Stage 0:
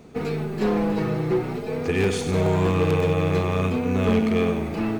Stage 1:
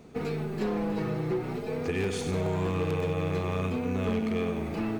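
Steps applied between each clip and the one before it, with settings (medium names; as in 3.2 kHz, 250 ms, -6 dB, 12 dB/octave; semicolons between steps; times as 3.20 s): compression 2.5:1, threshold -23 dBFS, peak gain reduction 5 dB; trim -4 dB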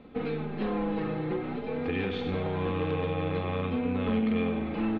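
Chebyshev low-pass 3.7 kHz, order 4; comb 3.8 ms, depth 49%; flutter echo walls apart 7.8 m, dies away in 0.21 s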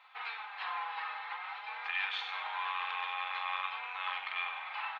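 elliptic high-pass 890 Hz, stop band 60 dB; trim +4 dB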